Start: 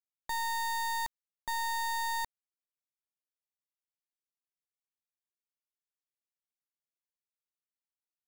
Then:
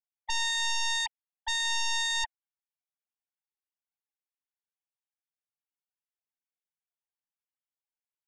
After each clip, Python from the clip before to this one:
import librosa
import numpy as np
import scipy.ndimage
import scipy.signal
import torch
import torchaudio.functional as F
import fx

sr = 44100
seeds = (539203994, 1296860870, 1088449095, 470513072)

y = fx.sine_speech(x, sr)
y = scipy.signal.sosfilt(scipy.signal.ellip(4, 1.0, 40, 230.0, 'highpass', fs=sr, output='sos'), y)
y = fx.fold_sine(y, sr, drive_db=12, ceiling_db=-26.0)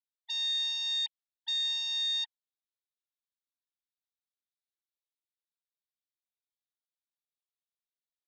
y = fx.bandpass_q(x, sr, hz=3800.0, q=5.0)
y = y * librosa.db_to_amplitude(2.5)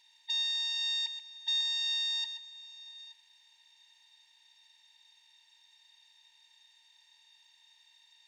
y = fx.bin_compress(x, sr, power=0.4)
y = fx.echo_multitap(y, sr, ms=(130, 878), db=(-10.5, -19.5))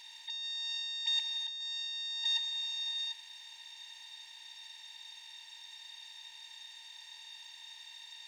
y = fx.over_compress(x, sr, threshold_db=-42.0, ratio=-1.0)
y = y * librosa.db_to_amplitude(5.5)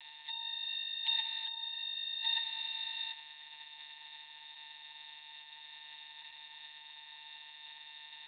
y = x + 10.0 ** (-22.0 / 20.0) * np.pad(x, (int(615 * sr / 1000.0), 0))[:len(x)]
y = fx.lpc_monotone(y, sr, seeds[0], pitch_hz=150.0, order=16)
y = y * librosa.db_to_amplitude(1.0)